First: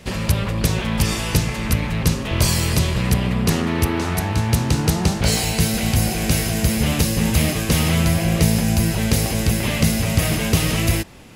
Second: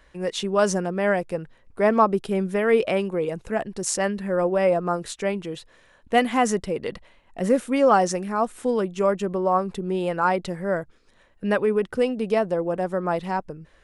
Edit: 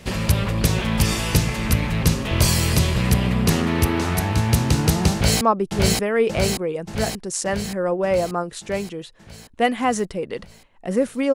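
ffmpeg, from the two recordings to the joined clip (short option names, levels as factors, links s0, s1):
-filter_complex "[0:a]apad=whole_dur=11.34,atrim=end=11.34,atrim=end=5.412[s0];[1:a]atrim=start=1.938:end=7.87[s1];[s0][s1]acrossfade=d=0.004:c1=hsin:c2=hsin,asplit=2[s2][s3];[s3]afade=t=in:st=5.13:d=0.01,afade=t=out:st=5.41:d=0.01,aecho=0:1:580|1160|1740|2320|2900|3480|4060|4640|5220|5800|6380:0.891251|0.579313|0.376554|0.24476|0.159094|0.103411|0.0672172|0.0436912|0.0283992|0.0184595|0.0119987[s4];[s2][s4]amix=inputs=2:normalize=0"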